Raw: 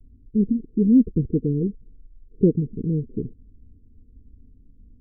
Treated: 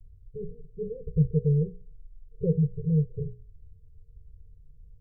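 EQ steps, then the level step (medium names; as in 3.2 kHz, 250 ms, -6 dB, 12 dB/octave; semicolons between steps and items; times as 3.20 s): elliptic band-stop 160–440 Hz, stop band 40 dB; peaking EQ 140 Hz +3 dB; hum notches 60/120/180/240/300/360/420/480 Hz; 0.0 dB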